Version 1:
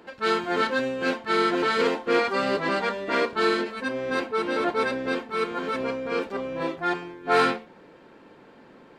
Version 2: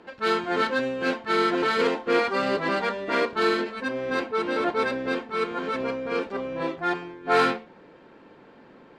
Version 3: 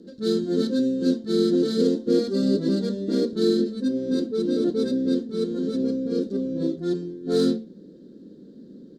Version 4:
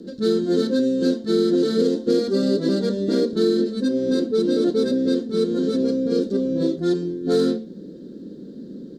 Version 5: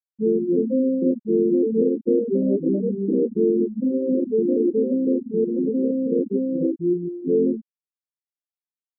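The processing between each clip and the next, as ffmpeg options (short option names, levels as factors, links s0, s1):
-af "adynamicsmooth=sensitivity=4.5:basefreq=7200"
-af "firequalizer=gain_entry='entry(130,0);entry(190,13);entry(520,-2);entry(830,-29);entry(1600,-18);entry(2400,-29);entry(3800,1);entry(6200,3)':delay=0.05:min_phase=1"
-filter_complex "[0:a]acrossover=split=400|2300[s0][s1][s2];[s0]acompressor=threshold=0.0282:ratio=4[s3];[s1]acompressor=threshold=0.0398:ratio=4[s4];[s2]acompressor=threshold=0.00631:ratio=4[s5];[s3][s4][s5]amix=inputs=3:normalize=0,volume=2.51"
-af "afftfilt=real='re*gte(hypot(re,im),0.316)':imag='im*gte(hypot(re,im),0.316)':win_size=1024:overlap=0.75"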